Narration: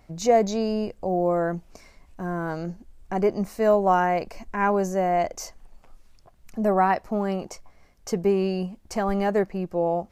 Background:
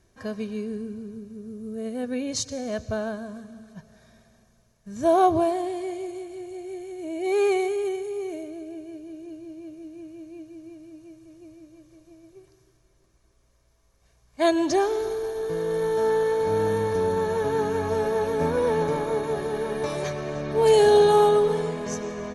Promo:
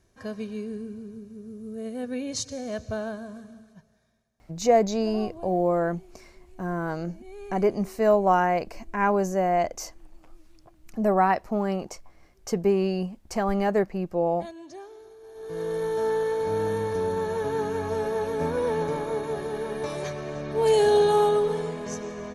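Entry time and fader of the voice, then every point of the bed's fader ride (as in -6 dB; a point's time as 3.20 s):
4.40 s, -0.5 dB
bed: 3.51 s -2.5 dB
4.33 s -20.5 dB
15.18 s -20.5 dB
15.61 s -3 dB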